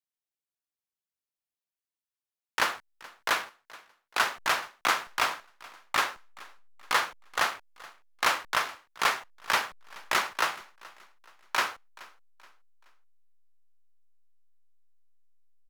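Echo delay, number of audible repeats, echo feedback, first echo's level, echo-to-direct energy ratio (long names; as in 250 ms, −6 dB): 426 ms, 2, 38%, −21.5 dB, −21.0 dB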